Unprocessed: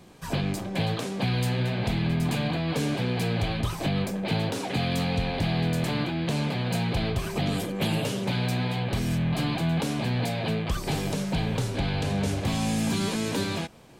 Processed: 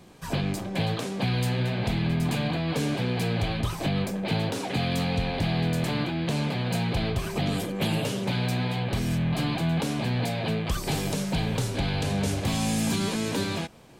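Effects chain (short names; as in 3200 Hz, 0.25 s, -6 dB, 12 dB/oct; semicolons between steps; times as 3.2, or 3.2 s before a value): 10.64–12.96 high shelf 5000 Hz +5 dB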